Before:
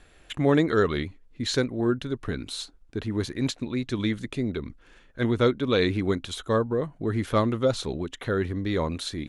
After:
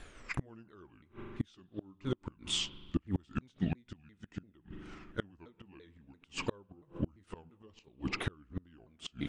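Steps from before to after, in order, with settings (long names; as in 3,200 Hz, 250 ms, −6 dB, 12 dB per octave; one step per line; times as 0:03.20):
pitch shifter swept by a sawtooth −7 semitones, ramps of 341 ms
spring reverb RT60 2 s, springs 41 ms, chirp 30 ms, DRR 17.5 dB
gate with flip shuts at −23 dBFS, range −35 dB
level +3 dB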